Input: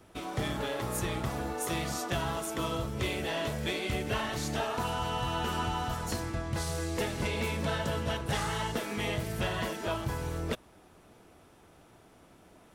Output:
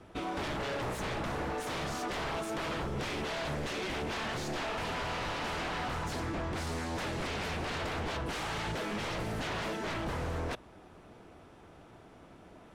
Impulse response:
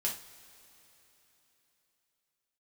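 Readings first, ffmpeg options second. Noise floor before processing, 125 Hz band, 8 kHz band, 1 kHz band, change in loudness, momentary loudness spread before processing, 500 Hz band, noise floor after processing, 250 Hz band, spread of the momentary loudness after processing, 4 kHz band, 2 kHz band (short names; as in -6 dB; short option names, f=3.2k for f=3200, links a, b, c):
-59 dBFS, -5.0 dB, -6.0 dB, -1.5 dB, -2.5 dB, 3 LU, -2.5 dB, -55 dBFS, -2.5 dB, 20 LU, -2.5 dB, -0.5 dB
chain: -af "acontrast=47,aeval=exprs='0.0422*(abs(mod(val(0)/0.0422+3,4)-2)-1)':c=same,aemphasis=mode=reproduction:type=50fm,volume=-2.5dB"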